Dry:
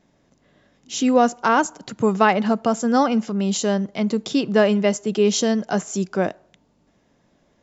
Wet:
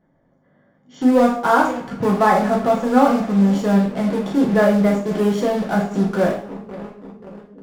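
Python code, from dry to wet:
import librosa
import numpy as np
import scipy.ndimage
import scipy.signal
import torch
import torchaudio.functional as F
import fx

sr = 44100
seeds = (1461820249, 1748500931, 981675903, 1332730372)

p1 = scipy.signal.savgol_filter(x, 41, 4, mode='constant')
p2 = fx.echo_bbd(p1, sr, ms=532, stages=2048, feedback_pct=76, wet_db=-18)
p3 = fx.fuzz(p2, sr, gain_db=36.0, gate_db=-34.0)
p4 = p2 + (p3 * librosa.db_to_amplitude(-12.0))
p5 = fx.rev_double_slope(p4, sr, seeds[0], early_s=0.45, late_s=1.5, knee_db=-24, drr_db=-3.0)
y = p5 * librosa.db_to_amplitude(-4.0)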